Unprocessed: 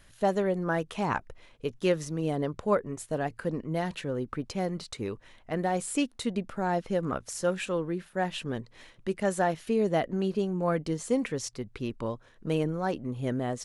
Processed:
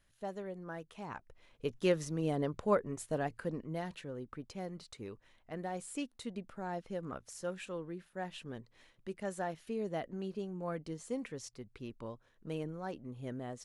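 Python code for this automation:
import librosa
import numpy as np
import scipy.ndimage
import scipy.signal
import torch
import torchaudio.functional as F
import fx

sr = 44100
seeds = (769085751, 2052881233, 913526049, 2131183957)

y = fx.gain(x, sr, db=fx.line((1.18, -15.5), (1.65, -4.0), (3.14, -4.0), (4.13, -11.5)))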